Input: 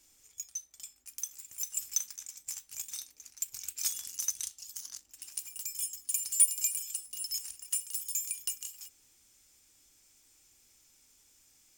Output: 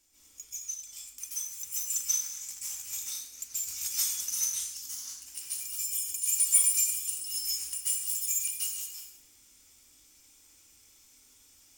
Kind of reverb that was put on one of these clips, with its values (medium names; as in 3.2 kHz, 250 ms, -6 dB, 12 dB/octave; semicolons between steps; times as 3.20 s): plate-style reverb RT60 0.68 s, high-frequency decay 0.95×, pre-delay 120 ms, DRR -9.5 dB; trim -5 dB